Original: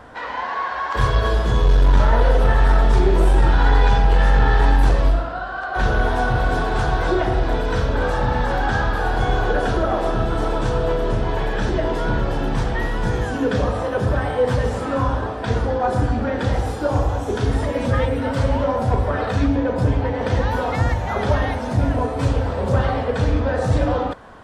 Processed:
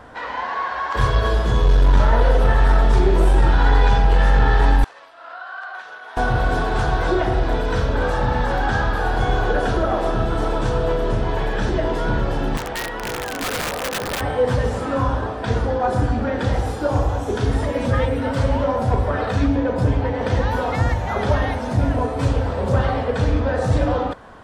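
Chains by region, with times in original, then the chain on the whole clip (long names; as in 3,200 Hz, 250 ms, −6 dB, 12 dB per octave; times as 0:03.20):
0:04.84–0:06.17: high-shelf EQ 3,700 Hz −7 dB + downward compressor 5 to 1, threshold −24 dBFS + high-pass filter 1,100 Hz
0:12.57–0:14.21: bass and treble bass −13 dB, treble −8 dB + wrap-around overflow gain 19 dB
whole clip: no processing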